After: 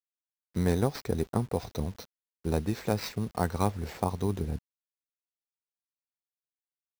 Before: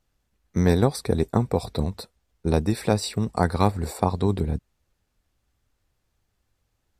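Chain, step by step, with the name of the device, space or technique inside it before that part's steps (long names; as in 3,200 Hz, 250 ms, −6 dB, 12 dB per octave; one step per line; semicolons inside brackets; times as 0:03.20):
early 8-bit sampler (sample-rate reduction 9,900 Hz, jitter 0%; bit reduction 8 bits)
level −7 dB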